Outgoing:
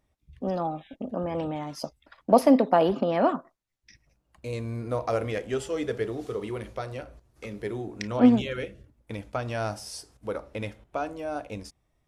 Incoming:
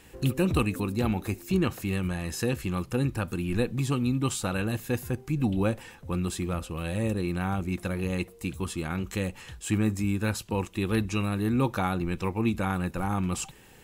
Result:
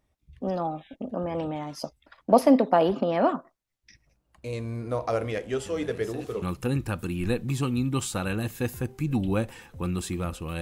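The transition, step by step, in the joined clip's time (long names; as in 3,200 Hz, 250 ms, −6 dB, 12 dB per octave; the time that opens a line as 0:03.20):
outgoing
0:05.66: mix in incoming from 0:01.95 0.76 s −14 dB
0:06.42: continue with incoming from 0:02.71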